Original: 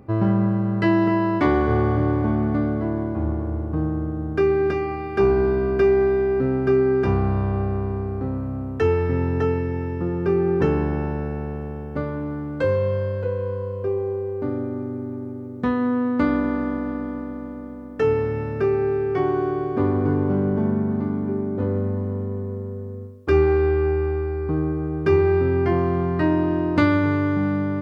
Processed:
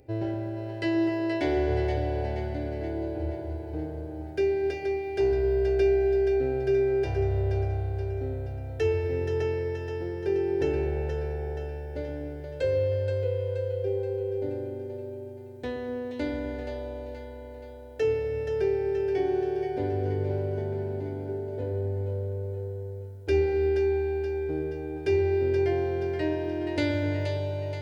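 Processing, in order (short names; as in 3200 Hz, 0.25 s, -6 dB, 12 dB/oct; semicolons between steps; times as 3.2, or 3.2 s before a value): high shelf 2200 Hz +8 dB; fixed phaser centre 480 Hz, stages 4; on a send: split-band echo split 440 Hz, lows 0.123 s, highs 0.476 s, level -6 dB; on the sum: gain -5.5 dB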